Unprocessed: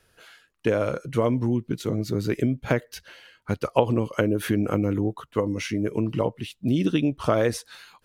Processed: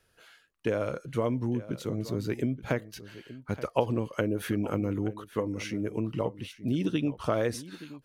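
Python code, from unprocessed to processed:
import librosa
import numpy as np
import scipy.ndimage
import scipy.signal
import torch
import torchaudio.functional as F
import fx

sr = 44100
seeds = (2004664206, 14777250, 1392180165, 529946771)

y = x + 10.0 ** (-16.0 / 20.0) * np.pad(x, (int(875 * sr / 1000.0), 0))[:len(x)]
y = y * librosa.db_to_amplitude(-6.0)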